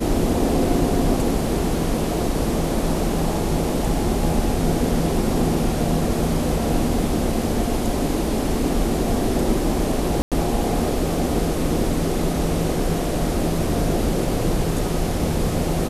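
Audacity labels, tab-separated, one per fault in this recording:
10.220000	10.320000	drop-out 97 ms

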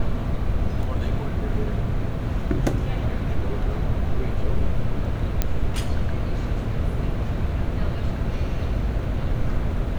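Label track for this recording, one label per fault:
5.420000	5.420000	click −6 dBFS

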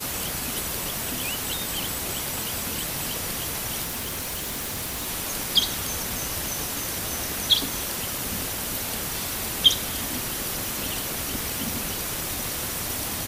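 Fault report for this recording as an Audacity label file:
3.830000	5.080000	clipping −27 dBFS

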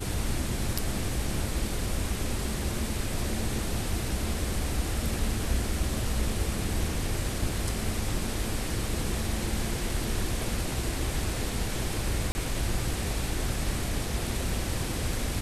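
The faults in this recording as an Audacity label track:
12.320000	12.350000	drop-out 30 ms

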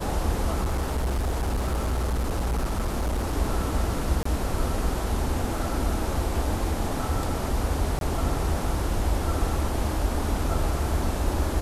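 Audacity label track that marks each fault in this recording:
0.620000	3.360000	clipping −22 dBFS
4.230000	4.250000	drop-out 24 ms
7.990000	8.010000	drop-out 22 ms

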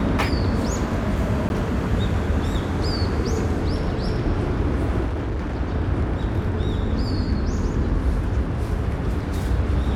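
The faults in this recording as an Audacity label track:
1.490000	1.500000	drop-out 11 ms
5.060000	5.560000	clipping −22 dBFS

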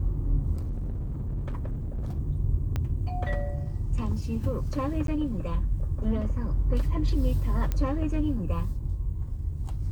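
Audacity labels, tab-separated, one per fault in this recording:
0.540000	2.200000	clipping −28 dBFS
2.760000	2.760000	click −17 dBFS
5.070000	5.080000	drop-out
7.720000	7.720000	click −15 dBFS

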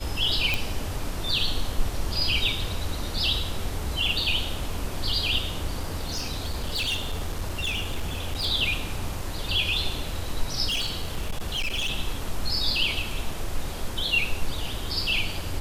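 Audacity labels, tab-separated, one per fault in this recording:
0.540000	0.540000	click
5.790000	8.460000	clipping −23.5 dBFS
10.680000	11.900000	clipping −23.5 dBFS

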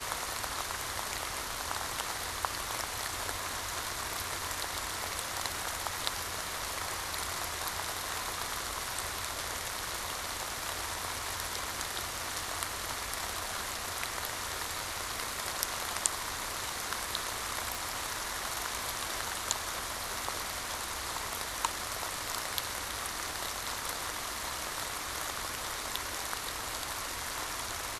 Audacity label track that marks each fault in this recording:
17.750000	17.750000	click

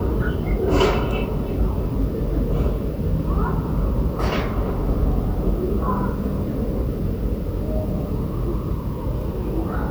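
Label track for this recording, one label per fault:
2.020000	2.020000	drop-out 3.3 ms

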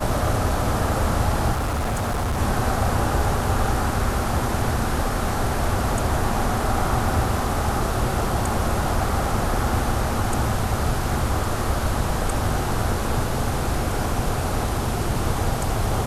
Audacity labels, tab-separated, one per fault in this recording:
1.520000	2.390000	clipping −20.5 dBFS

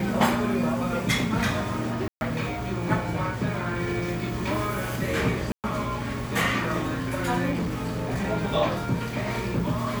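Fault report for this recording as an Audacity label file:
2.080000	2.210000	drop-out 131 ms
5.520000	5.640000	drop-out 118 ms
7.510000	8.280000	clipping −23.5 dBFS

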